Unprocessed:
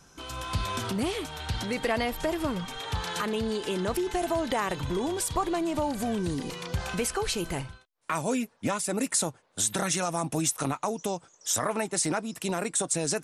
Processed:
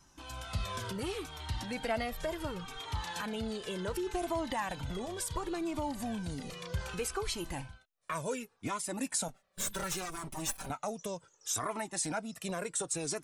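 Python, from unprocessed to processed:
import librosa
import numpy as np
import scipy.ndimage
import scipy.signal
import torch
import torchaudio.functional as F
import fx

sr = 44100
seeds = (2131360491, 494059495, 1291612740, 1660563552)

y = fx.lower_of_two(x, sr, delay_ms=5.2, at=(9.28, 10.7))
y = fx.comb_cascade(y, sr, direction='falling', hz=0.68)
y = F.gain(torch.from_numpy(y), -2.5).numpy()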